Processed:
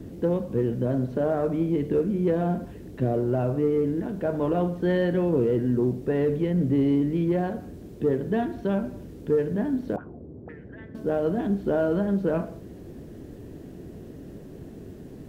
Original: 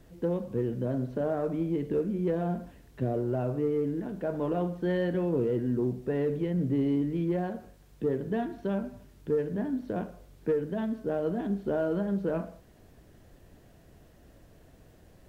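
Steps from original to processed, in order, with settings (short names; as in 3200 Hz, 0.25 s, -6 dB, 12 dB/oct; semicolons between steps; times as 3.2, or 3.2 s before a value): 9.96–10.95 auto-wah 330–2000 Hz, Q 6.4, up, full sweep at -27 dBFS; band noise 60–400 Hz -47 dBFS; gain +5 dB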